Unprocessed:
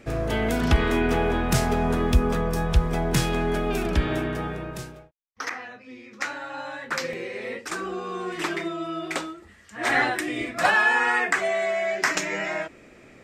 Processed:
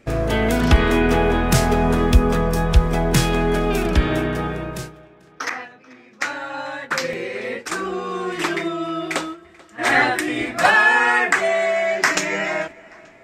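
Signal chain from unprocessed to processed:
noise gate −37 dBFS, range −9 dB
tape delay 439 ms, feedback 59%, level −23.5 dB, low-pass 5,200 Hz
level +5.5 dB

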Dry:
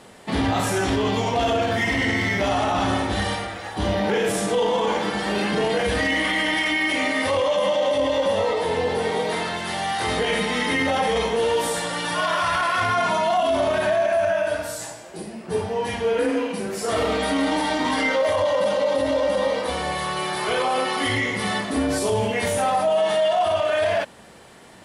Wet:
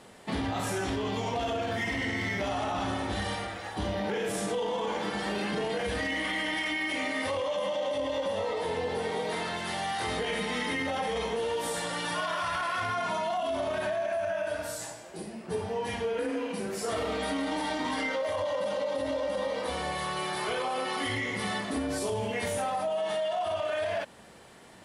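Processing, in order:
downward compressor, threshold −22 dBFS, peak gain reduction 5.5 dB
level −5.5 dB

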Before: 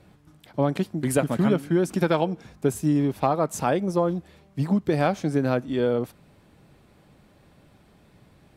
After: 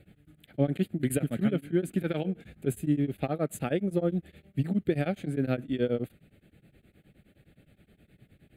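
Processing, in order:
speech leveller within 4 dB 0.5 s
phaser with its sweep stopped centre 2,400 Hz, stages 4
tremolo along a rectified sine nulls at 9.6 Hz

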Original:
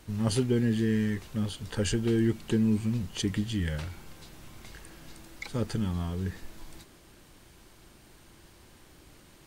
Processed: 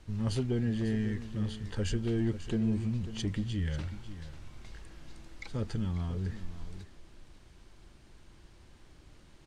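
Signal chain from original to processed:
low-pass filter 7,100 Hz 12 dB per octave
low-shelf EQ 90 Hz +10.5 dB
soft clipping −15 dBFS, distortion −22 dB
on a send: single-tap delay 544 ms −13 dB
on the sum: level −5.5 dB

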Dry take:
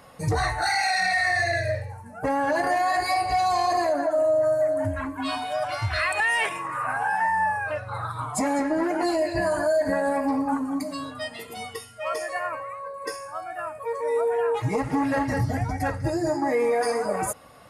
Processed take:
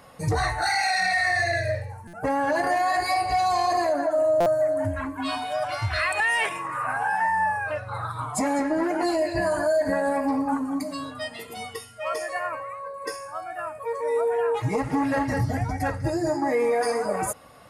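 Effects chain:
buffer that repeats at 0:02.07/0:04.40, samples 256, times 10

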